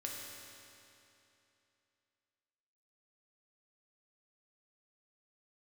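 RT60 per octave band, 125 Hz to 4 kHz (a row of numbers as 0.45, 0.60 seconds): 2.9, 2.9, 2.9, 2.9, 2.8, 2.7 seconds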